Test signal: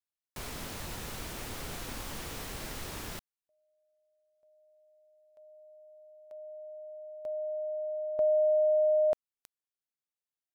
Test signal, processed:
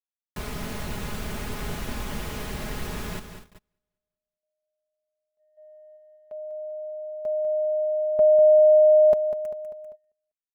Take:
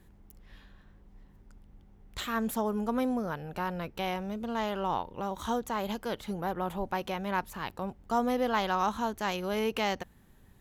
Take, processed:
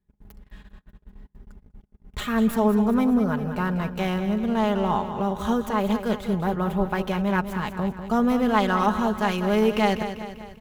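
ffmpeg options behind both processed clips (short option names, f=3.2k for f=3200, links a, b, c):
-filter_complex "[0:a]acrossover=split=3200[a][b];[b]aeval=exprs='max(val(0),0)':c=same[c];[a][c]amix=inputs=2:normalize=0,aecho=1:1:197|394|591|788|985|1182:0.316|0.164|0.0855|0.0445|0.0231|0.012,agate=range=-29dB:threshold=-53dB:ratio=16:release=89:detection=rms,equalizer=f=96:t=o:w=2.1:g=7.5,aecho=1:1:4.8:0.54,volume=5dB"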